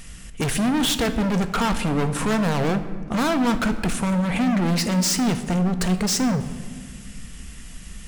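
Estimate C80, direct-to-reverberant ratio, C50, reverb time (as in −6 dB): 13.0 dB, 8.0 dB, 11.5 dB, 1.8 s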